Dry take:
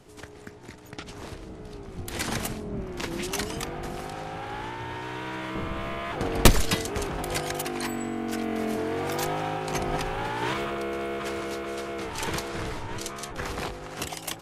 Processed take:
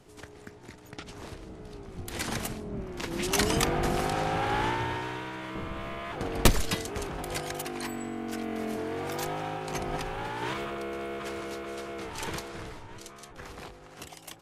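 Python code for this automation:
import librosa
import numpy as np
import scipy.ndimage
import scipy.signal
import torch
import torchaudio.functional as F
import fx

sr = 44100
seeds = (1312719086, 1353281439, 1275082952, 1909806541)

y = fx.gain(x, sr, db=fx.line((3.06, -3.0), (3.5, 7.0), (4.7, 7.0), (5.33, -4.5), (12.26, -4.5), (12.93, -11.0)))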